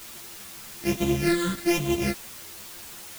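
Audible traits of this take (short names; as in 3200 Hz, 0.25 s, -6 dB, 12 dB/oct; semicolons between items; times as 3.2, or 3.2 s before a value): a buzz of ramps at a fixed pitch in blocks of 128 samples; phasing stages 8, 1.2 Hz, lowest notch 740–1500 Hz; a quantiser's noise floor 8-bit, dither triangular; a shimmering, thickened sound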